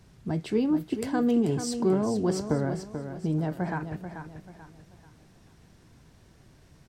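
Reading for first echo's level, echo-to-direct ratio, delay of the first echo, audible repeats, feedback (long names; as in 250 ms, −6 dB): −9.0 dB, −8.5 dB, 437 ms, 3, 35%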